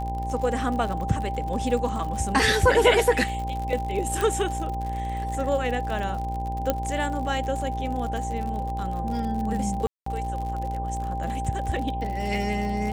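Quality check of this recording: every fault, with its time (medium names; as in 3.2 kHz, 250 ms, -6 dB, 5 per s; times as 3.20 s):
buzz 60 Hz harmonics 17 -31 dBFS
crackle 67 per s -31 dBFS
whine 790 Hz -30 dBFS
4.21 s: pop
6.70 s: pop -9 dBFS
9.87–10.06 s: dropout 194 ms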